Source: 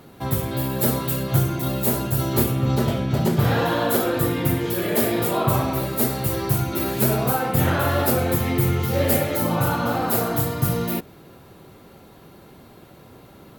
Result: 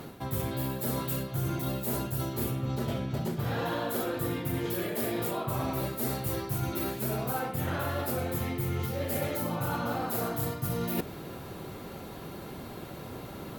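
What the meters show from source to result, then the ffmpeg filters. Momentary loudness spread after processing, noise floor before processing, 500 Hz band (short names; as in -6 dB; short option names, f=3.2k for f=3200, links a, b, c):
11 LU, -47 dBFS, -10.0 dB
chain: -af "areverse,acompressor=threshold=-33dB:ratio=16,areverse,volume=5dB" -ar 48000 -c:a libopus -b:a 96k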